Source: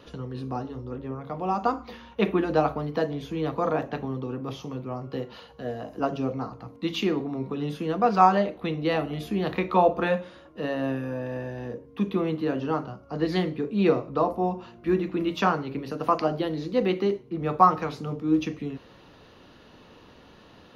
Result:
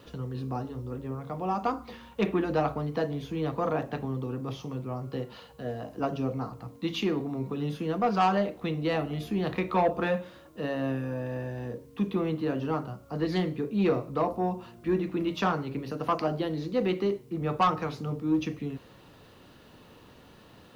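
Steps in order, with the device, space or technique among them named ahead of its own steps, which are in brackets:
open-reel tape (soft clipping −14.5 dBFS, distortion −14 dB; parametric band 120 Hz +4 dB 1.01 octaves; white noise bed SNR 40 dB)
level −2.5 dB

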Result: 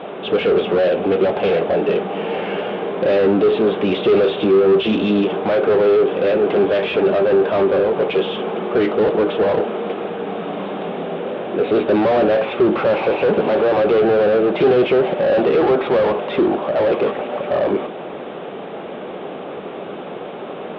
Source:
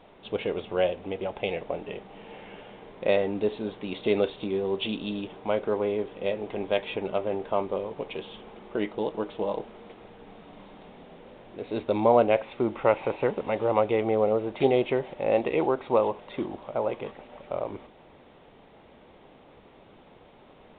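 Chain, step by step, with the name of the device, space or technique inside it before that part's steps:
overdrive pedal into a guitar cabinet (mid-hump overdrive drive 36 dB, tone 1,200 Hz, clips at −7.5 dBFS; loudspeaker in its box 89–3,900 Hz, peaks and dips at 110 Hz −4 dB, 180 Hz +6 dB, 390 Hz +4 dB, 930 Hz −7 dB, 2,000 Hz −6 dB)

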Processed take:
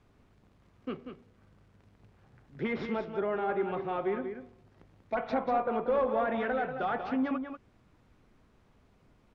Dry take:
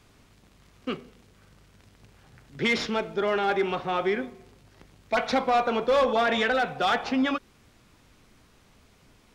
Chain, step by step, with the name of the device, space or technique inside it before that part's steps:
through cloth (high-shelf EQ 2,500 Hz −15 dB)
treble cut that deepens with the level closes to 2,200 Hz, closed at −22.5 dBFS
single-tap delay 189 ms −8 dB
level −5 dB

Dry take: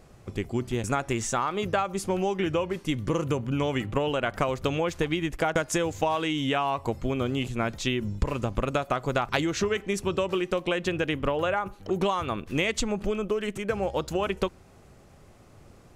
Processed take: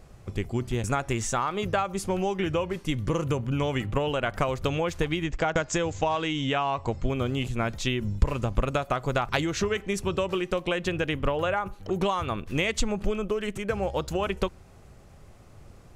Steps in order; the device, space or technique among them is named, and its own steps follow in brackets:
0:05.24–0:07.10: Butterworth low-pass 7,900 Hz 96 dB per octave
low shelf boost with a cut just above (low-shelf EQ 95 Hz +7 dB; parametric band 290 Hz −2.5 dB 1 octave)

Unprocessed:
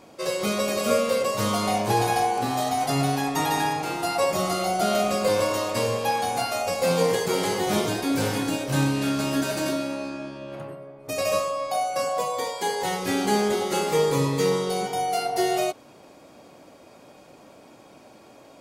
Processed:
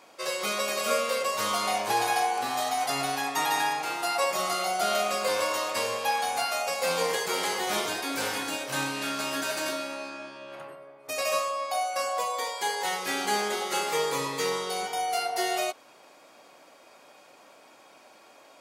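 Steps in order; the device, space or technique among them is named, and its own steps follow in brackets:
filter by subtraction (in parallel: low-pass filter 1,400 Hz 12 dB per octave + polarity inversion)
on the sum: level −1 dB

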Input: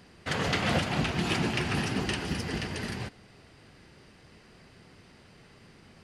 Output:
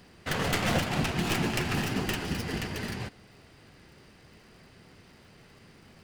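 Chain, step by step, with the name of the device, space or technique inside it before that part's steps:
record under a worn stylus (stylus tracing distortion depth 0.17 ms; surface crackle 120 per second −52 dBFS; pink noise bed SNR 41 dB)

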